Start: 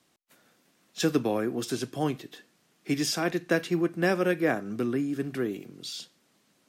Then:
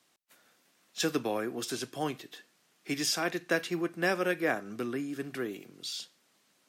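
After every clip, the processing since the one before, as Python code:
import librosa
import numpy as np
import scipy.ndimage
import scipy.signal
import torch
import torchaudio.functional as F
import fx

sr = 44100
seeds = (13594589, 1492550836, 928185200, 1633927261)

y = fx.low_shelf(x, sr, hz=410.0, db=-10.0)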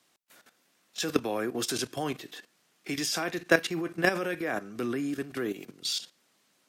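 y = fx.level_steps(x, sr, step_db=13)
y = y * 10.0 ** (8.5 / 20.0)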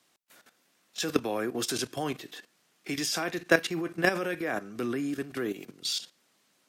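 y = x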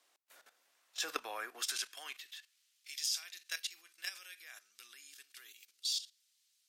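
y = fx.filter_sweep_highpass(x, sr, from_hz=520.0, to_hz=3900.0, start_s=0.45, end_s=2.93, q=1.0)
y = fx.cheby_harmonics(y, sr, harmonics=(8,), levels_db=(-43,), full_scale_db=-5.0)
y = y * 10.0 ** (-4.5 / 20.0)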